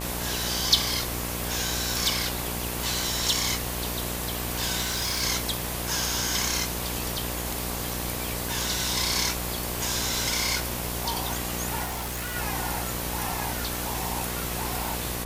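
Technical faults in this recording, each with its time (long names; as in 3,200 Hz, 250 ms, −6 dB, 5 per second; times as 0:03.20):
mains buzz 60 Hz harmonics 19 −34 dBFS
0:04.81–0:05.23: clipping −24 dBFS
0:11.84–0:12.36: clipping −28.5 dBFS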